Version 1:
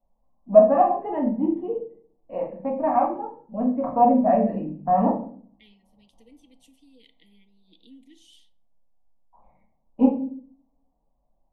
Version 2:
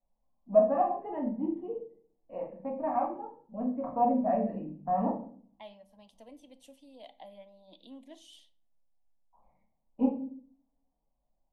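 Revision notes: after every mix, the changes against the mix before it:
first voice -9.0 dB; second voice: remove brick-wall FIR band-stop 510–1800 Hz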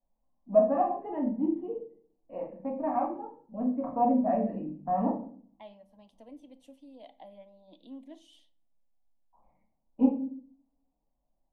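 second voice: add high shelf 2600 Hz -8.5 dB; master: add bell 290 Hz +5 dB 0.55 oct

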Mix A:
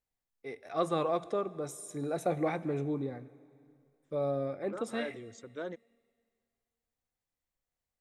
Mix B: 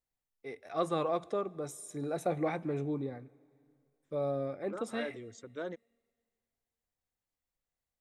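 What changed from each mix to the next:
first voice: send -6.5 dB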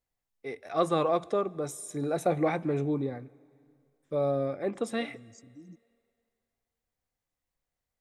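first voice +5.5 dB; second voice: add brick-wall FIR band-stop 330–4600 Hz

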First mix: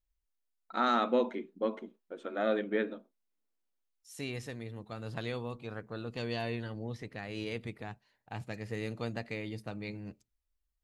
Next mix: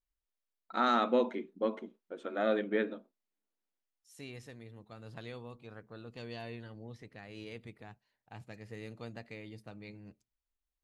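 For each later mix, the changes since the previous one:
second voice -8.0 dB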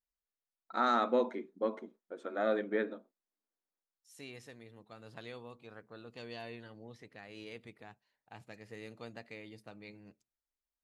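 first voice: add bell 2900 Hz -9 dB 0.57 oct; master: add low shelf 150 Hz -11.5 dB

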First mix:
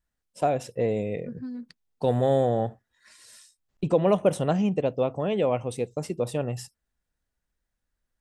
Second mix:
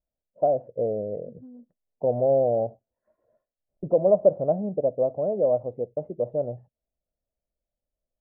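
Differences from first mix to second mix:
first voice +4.5 dB; master: add ladder low-pass 670 Hz, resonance 70%

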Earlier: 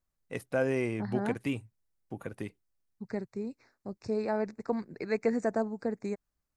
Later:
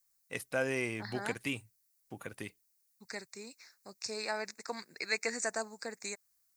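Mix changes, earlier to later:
second voice: add tilt +4 dB/oct; master: add tilt shelf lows -7 dB, about 1300 Hz

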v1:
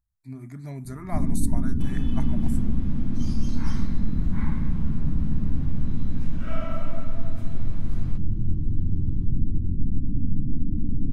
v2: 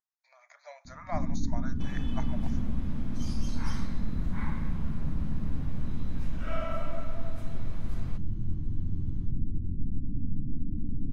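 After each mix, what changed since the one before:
speech: add brick-wall FIR band-pass 480–7000 Hz; first sound -7.0 dB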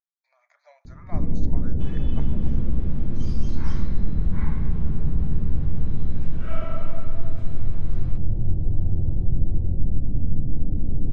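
speech -5.5 dB; first sound: remove ladder low-pass 300 Hz, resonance 55%; master: add air absorption 82 m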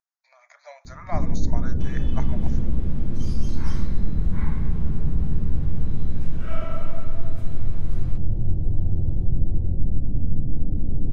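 speech +9.5 dB; master: remove air absorption 82 m

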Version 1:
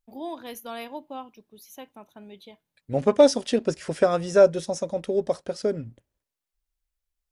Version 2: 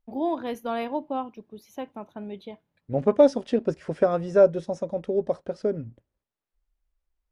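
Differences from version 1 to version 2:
first voice +9.0 dB; master: add LPF 1100 Hz 6 dB/oct

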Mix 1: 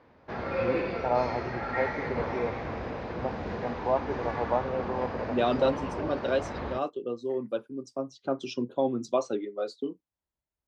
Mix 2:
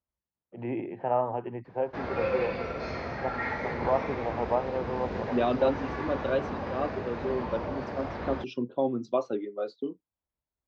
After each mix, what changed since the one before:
second voice: add air absorption 210 m; background: entry +1.65 s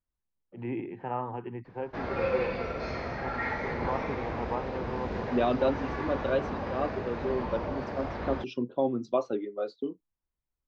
first voice: add bell 620 Hz -13.5 dB 0.56 oct; master: remove HPF 56 Hz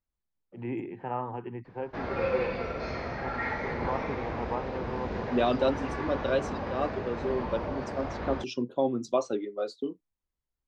second voice: remove air absorption 210 m

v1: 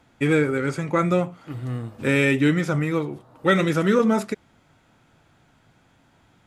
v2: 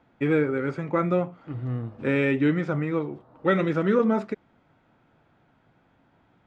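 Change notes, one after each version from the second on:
first voice: add low shelf 110 Hz -11.5 dB; master: add tape spacing loss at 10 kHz 30 dB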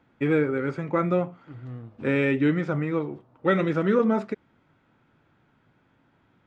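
second voice -8.5 dB

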